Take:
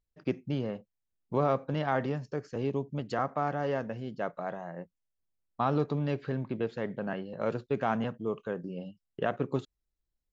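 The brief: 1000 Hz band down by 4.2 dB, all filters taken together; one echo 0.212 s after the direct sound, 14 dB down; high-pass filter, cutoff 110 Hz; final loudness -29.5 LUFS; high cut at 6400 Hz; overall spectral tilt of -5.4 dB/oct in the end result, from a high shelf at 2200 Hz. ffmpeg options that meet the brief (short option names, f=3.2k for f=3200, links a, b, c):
-af "highpass=110,lowpass=6.4k,equalizer=f=1k:t=o:g=-5.5,highshelf=f=2.2k:g=-3.5,aecho=1:1:212:0.2,volume=5dB"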